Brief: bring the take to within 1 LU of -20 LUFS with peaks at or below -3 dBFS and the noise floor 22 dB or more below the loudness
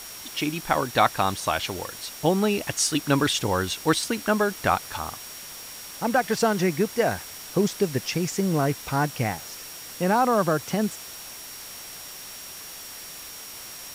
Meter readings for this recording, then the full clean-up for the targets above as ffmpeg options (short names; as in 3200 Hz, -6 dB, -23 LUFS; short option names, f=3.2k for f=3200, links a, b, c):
steady tone 5600 Hz; tone level -44 dBFS; noise floor -40 dBFS; noise floor target -47 dBFS; loudness -25.0 LUFS; peak -6.0 dBFS; loudness target -20.0 LUFS
-> -af "bandreject=f=5.6k:w=30"
-af "afftdn=nr=7:nf=-40"
-af "volume=5dB,alimiter=limit=-3dB:level=0:latency=1"